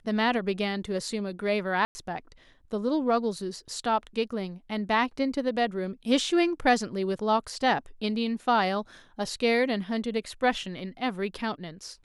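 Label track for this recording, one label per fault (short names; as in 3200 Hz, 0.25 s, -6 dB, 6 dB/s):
1.850000	1.950000	gap 0.1 s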